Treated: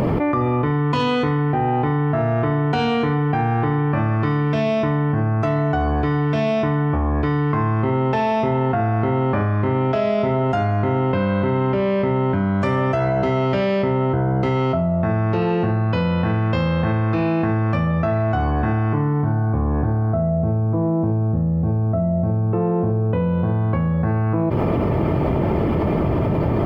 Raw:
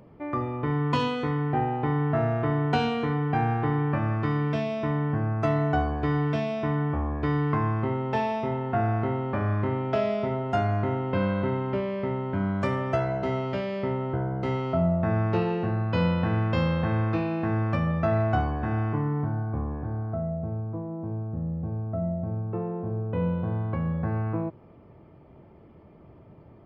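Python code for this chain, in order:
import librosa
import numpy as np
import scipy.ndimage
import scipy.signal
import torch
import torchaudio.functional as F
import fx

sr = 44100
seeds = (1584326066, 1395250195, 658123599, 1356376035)

y = fx.env_flatten(x, sr, amount_pct=100)
y = y * librosa.db_to_amplitude(1.5)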